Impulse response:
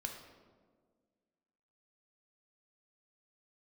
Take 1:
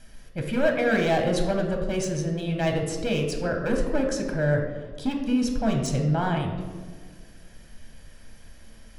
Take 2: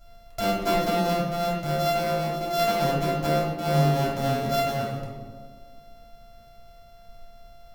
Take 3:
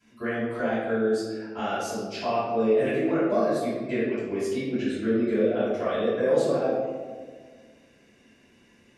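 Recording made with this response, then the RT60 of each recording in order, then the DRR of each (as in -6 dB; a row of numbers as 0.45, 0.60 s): 1; 1.7, 1.6, 1.6 s; 2.0, -6.5, -15.0 dB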